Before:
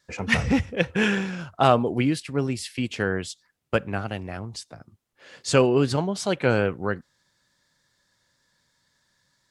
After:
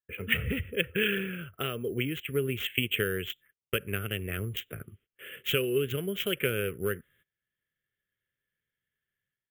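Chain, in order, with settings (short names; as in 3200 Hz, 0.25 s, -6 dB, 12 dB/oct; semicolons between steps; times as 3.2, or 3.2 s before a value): Wiener smoothing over 9 samples; careless resampling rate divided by 4×, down none, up hold; bell 10000 Hz -2 dB 2.1 oct, from 2.11 s +6 dB; AGC gain up to 12.5 dB; gate -53 dBFS, range -23 dB; compressor 6:1, threshold -19 dBFS, peak gain reduction 10.5 dB; EQ curve 100 Hz 0 dB, 290 Hz -6 dB, 420 Hz +5 dB, 870 Hz -25 dB, 1300 Hz -2 dB, 3200 Hz +11 dB, 4500 Hz -28 dB, 12000 Hz +3 dB; gain -6 dB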